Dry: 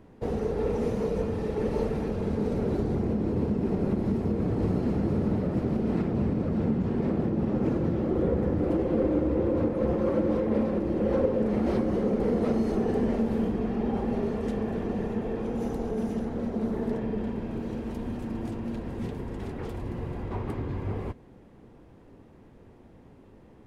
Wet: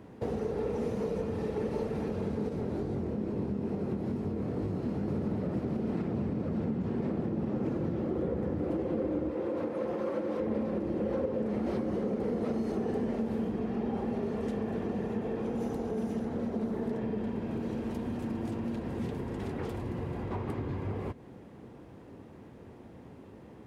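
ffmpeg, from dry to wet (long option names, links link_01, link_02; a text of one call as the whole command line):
ffmpeg -i in.wav -filter_complex "[0:a]asettb=1/sr,asplit=3[link_01][link_02][link_03];[link_01]atrim=end=2.494[link_04];[link_02]atrim=start=2.49:end=5.08,asetpts=PTS-STARTPTS,afade=type=in:duration=0.004:curve=qsin,afade=type=out:start_time=2.586:duration=0.004:curve=qsin,flanger=delay=19:depth=6.4:speed=2.3[link_05];[link_03]atrim=start=5.076[link_06];[link_04][link_05]acrossfade=duration=0.004:curve1=hsin:curve2=qsin[link_07];[link_07][link_06]acrossfade=duration=0.004:curve1=qsin:curve2=hsin,asettb=1/sr,asplit=3[link_08][link_09][link_10];[link_08]atrim=end=9.304[link_11];[link_09]atrim=start=9.3:end=10.4,asetpts=PTS-STARTPTS,afade=type=in:duration=0.004:curve=qsin,afade=type=out:start_time=1.096:duration=0.004:curve=qsin,highpass=frequency=490:poles=1[link_12];[link_10]atrim=start=10.396[link_13];[link_11][link_12]acrossfade=duration=0.004:curve1=hsin:curve2=qsin[link_14];[link_14][link_13]acrossfade=duration=0.004:curve1=qsin:curve2=hsin,acompressor=threshold=-35dB:ratio=3,highpass=77,volume=3.5dB" out.wav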